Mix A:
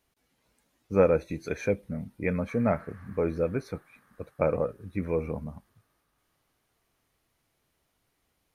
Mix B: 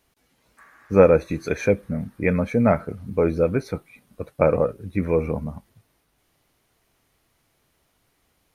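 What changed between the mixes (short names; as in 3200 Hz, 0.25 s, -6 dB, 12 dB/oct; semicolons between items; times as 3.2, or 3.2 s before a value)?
speech +7.5 dB; background: entry -1.90 s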